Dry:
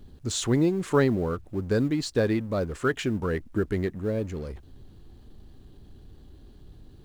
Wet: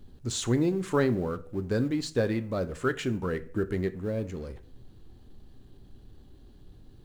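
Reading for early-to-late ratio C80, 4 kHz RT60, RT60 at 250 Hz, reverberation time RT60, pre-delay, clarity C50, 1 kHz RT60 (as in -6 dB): 22.0 dB, 0.35 s, 0.60 s, 0.50 s, 4 ms, 17.5 dB, 0.40 s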